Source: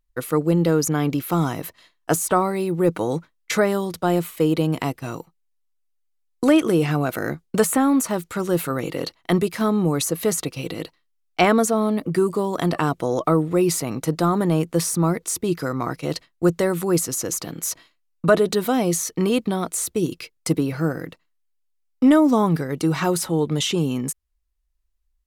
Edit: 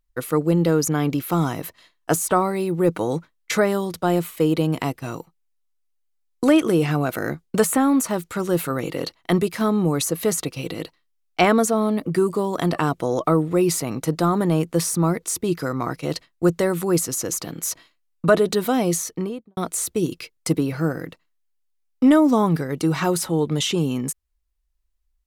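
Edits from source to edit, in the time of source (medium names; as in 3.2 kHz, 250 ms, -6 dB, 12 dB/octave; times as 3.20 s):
18.93–19.57 s: studio fade out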